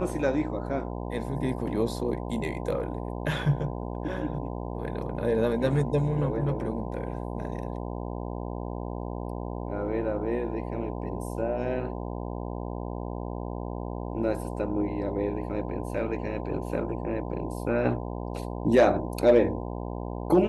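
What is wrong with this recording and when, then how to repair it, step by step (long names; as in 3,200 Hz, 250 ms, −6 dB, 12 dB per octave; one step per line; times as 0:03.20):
mains buzz 60 Hz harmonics 17 −34 dBFS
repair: hum removal 60 Hz, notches 17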